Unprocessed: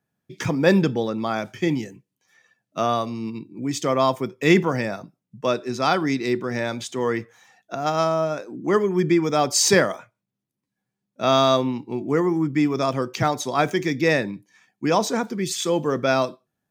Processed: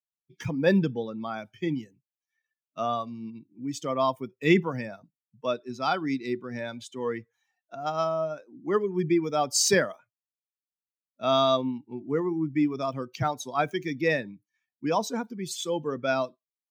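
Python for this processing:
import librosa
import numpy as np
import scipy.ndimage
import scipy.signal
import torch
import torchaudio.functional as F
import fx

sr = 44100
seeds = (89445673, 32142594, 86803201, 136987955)

y = fx.bin_expand(x, sr, power=1.5)
y = F.gain(torch.from_numpy(y), -3.0).numpy()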